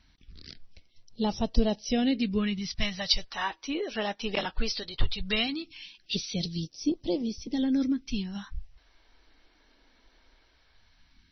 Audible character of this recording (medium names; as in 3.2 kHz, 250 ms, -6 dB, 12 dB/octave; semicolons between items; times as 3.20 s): phasing stages 2, 0.18 Hz, lowest notch 120–1600 Hz; a quantiser's noise floor 12-bit, dither none; MP3